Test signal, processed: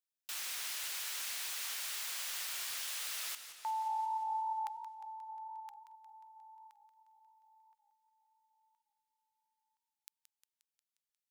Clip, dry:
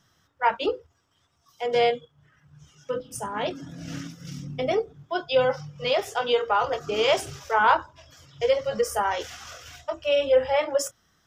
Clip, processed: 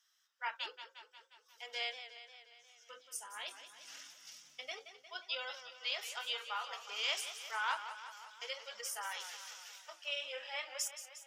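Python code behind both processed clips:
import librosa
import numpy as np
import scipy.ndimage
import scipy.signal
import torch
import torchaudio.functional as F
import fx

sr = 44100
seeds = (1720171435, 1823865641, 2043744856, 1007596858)

y = scipy.signal.sosfilt(scipy.signal.bessel(2, 2400.0, 'highpass', norm='mag', fs=sr, output='sos'), x)
y = fx.echo_warbled(y, sr, ms=178, feedback_pct=63, rate_hz=2.8, cents=114, wet_db=-11.0)
y = y * librosa.db_to_amplitude(-6.0)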